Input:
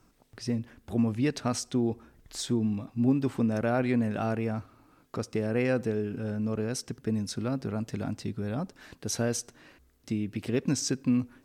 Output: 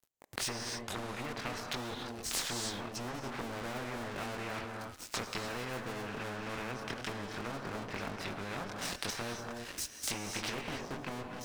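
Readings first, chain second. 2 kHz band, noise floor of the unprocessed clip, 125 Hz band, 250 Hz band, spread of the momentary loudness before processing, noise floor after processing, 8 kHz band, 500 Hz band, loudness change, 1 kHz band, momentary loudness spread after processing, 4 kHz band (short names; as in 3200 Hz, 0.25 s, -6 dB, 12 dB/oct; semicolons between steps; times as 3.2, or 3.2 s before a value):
+1.0 dB, -63 dBFS, -13.0 dB, -15.0 dB, 9 LU, -50 dBFS, -2.5 dB, -9.5 dB, -8.5 dB, -0.5 dB, 5 LU, +1.5 dB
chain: added harmonics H 5 -15 dB, 6 -20 dB, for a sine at -14 dBFS; chorus voices 4, 0.5 Hz, delay 23 ms, depth 2.7 ms; bell 4300 Hz +2.5 dB 2.2 oct; thin delay 0.688 s, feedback 80%, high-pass 3000 Hz, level -17 dB; treble ducked by the level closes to 600 Hz, closed at -24 dBFS; high shelf 9300 Hz +12 dB; crossover distortion -51 dBFS; non-linear reverb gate 0.32 s rising, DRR 9.5 dB; spectral compressor 4:1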